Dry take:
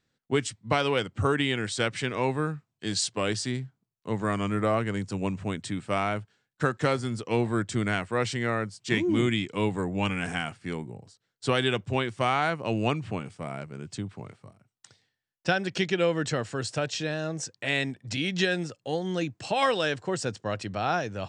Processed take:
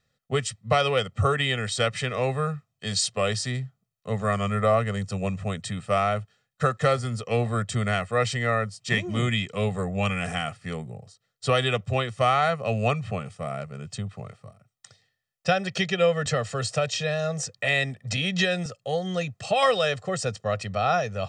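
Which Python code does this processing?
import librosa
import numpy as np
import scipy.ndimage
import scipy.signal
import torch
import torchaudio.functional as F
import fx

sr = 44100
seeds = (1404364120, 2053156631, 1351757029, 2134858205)

y = x + 1.0 * np.pad(x, (int(1.6 * sr / 1000.0), 0))[:len(x)]
y = fx.band_squash(y, sr, depth_pct=40, at=(16.26, 18.66))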